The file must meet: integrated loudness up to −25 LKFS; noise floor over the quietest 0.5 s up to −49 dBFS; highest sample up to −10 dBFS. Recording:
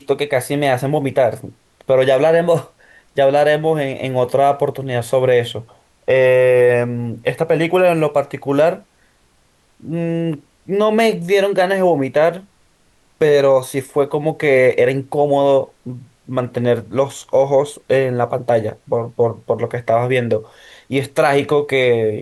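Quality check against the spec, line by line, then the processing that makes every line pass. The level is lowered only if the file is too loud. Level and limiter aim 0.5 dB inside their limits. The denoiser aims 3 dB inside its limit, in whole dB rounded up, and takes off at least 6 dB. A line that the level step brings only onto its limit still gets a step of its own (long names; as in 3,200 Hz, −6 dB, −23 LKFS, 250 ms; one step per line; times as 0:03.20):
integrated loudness −16.5 LKFS: out of spec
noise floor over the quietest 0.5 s −57 dBFS: in spec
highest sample −4.5 dBFS: out of spec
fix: level −9 dB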